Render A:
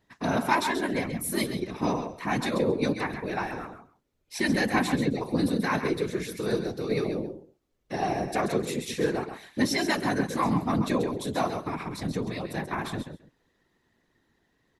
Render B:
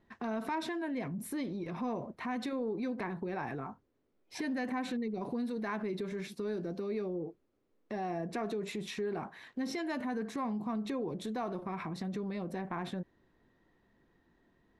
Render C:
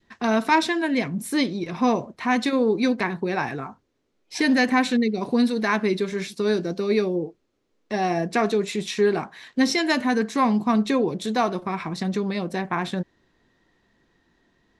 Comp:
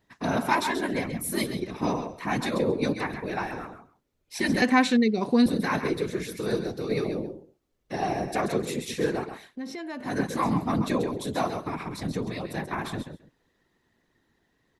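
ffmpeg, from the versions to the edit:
ffmpeg -i take0.wav -i take1.wav -i take2.wav -filter_complex "[0:a]asplit=3[link_01][link_02][link_03];[link_01]atrim=end=4.622[link_04];[2:a]atrim=start=4.618:end=5.462[link_05];[link_02]atrim=start=5.458:end=9.57[link_06];[1:a]atrim=start=9.41:end=10.17[link_07];[link_03]atrim=start=10.01[link_08];[link_04][link_05]acrossfade=duration=0.004:curve1=hsin:curve2=hsin[link_09];[link_09][link_06]acrossfade=duration=0.004:curve1=hsin:curve2=hsin[link_10];[link_10][link_07]acrossfade=duration=0.16:curve1=tri:curve2=tri[link_11];[link_11][link_08]acrossfade=duration=0.16:curve1=tri:curve2=tri" out.wav

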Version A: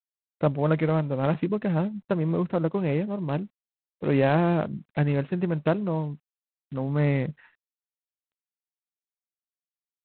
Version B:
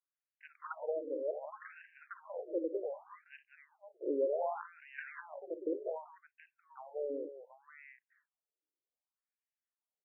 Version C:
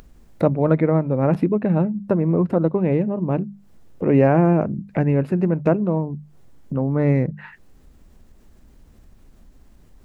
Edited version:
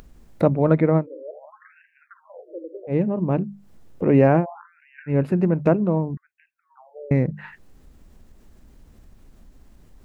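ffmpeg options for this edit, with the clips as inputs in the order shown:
ffmpeg -i take0.wav -i take1.wav -i take2.wav -filter_complex "[1:a]asplit=3[link_01][link_02][link_03];[2:a]asplit=4[link_04][link_05][link_06][link_07];[link_04]atrim=end=1.07[link_08];[link_01]atrim=start=0.97:end=2.97[link_09];[link_05]atrim=start=2.87:end=4.46[link_10];[link_02]atrim=start=4.36:end=5.16[link_11];[link_06]atrim=start=5.06:end=6.172[link_12];[link_03]atrim=start=6.168:end=7.112[link_13];[link_07]atrim=start=7.108[link_14];[link_08][link_09]acrossfade=duration=0.1:curve1=tri:curve2=tri[link_15];[link_15][link_10]acrossfade=duration=0.1:curve1=tri:curve2=tri[link_16];[link_16][link_11]acrossfade=duration=0.1:curve1=tri:curve2=tri[link_17];[link_17][link_12]acrossfade=duration=0.1:curve1=tri:curve2=tri[link_18];[link_18][link_13]acrossfade=duration=0.004:curve1=hsin:curve2=hsin[link_19];[link_19][link_14]acrossfade=duration=0.004:curve1=hsin:curve2=hsin" out.wav

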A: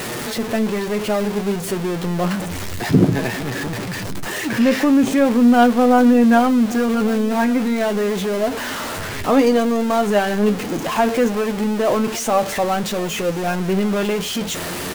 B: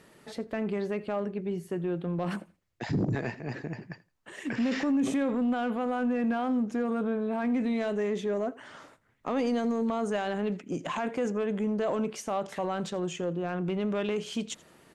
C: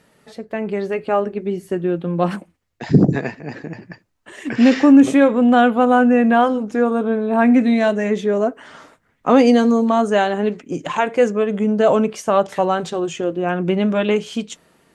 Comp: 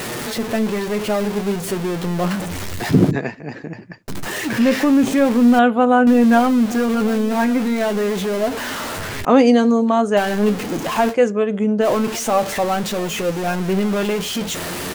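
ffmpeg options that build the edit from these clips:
ffmpeg -i take0.wav -i take1.wav -i take2.wav -filter_complex "[2:a]asplit=4[link_01][link_02][link_03][link_04];[0:a]asplit=5[link_05][link_06][link_07][link_08][link_09];[link_05]atrim=end=3.112[link_10];[link_01]atrim=start=3.108:end=4.082[link_11];[link_06]atrim=start=4.078:end=5.592[link_12];[link_02]atrim=start=5.588:end=6.072[link_13];[link_07]atrim=start=6.068:end=9.252[link_14];[link_03]atrim=start=9.248:end=10.172[link_15];[link_08]atrim=start=10.168:end=11.15[link_16];[link_04]atrim=start=11.09:end=11.86[link_17];[link_09]atrim=start=11.8[link_18];[link_10][link_11]acrossfade=duration=0.004:curve1=hsin:curve2=hsin[link_19];[link_19][link_12]acrossfade=duration=0.004:curve1=hsin:curve2=hsin[link_20];[link_20][link_13]acrossfade=duration=0.004:curve1=hsin:curve2=hsin[link_21];[link_21][link_14]acrossfade=duration=0.004:curve1=hsin:curve2=hsin[link_22];[link_22][link_15]acrossfade=duration=0.004:curve1=hsin:curve2=hsin[link_23];[link_23][link_16]acrossfade=duration=0.004:curve1=hsin:curve2=hsin[link_24];[link_24][link_17]acrossfade=duration=0.06:curve1=tri:curve2=tri[link_25];[link_25][link_18]acrossfade=duration=0.06:curve1=tri:curve2=tri" out.wav

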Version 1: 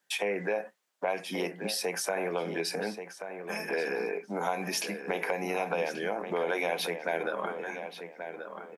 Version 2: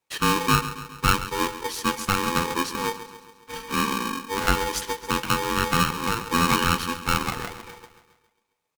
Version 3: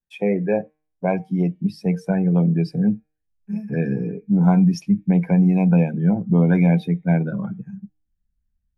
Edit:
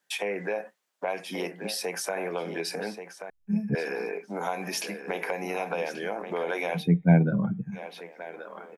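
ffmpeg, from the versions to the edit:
ffmpeg -i take0.wav -i take1.wav -i take2.wav -filter_complex "[2:a]asplit=2[link_01][link_02];[0:a]asplit=3[link_03][link_04][link_05];[link_03]atrim=end=3.302[link_06];[link_01]atrim=start=3.298:end=3.752[link_07];[link_04]atrim=start=3.748:end=6.84[link_08];[link_02]atrim=start=6.74:end=7.81[link_09];[link_05]atrim=start=7.71[link_10];[link_06][link_07]acrossfade=duration=0.004:curve1=hsin:curve2=hsin[link_11];[link_11][link_08]acrossfade=duration=0.004:curve1=hsin:curve2=hsin[link_12];[link_12][link_09]acrossfade=duration=0.1:curve1=tri:curve2=tri[link_13];[link_13][link_10]acrossfade=duration=0.1:curve1=tri:curve2=tri" out.wav

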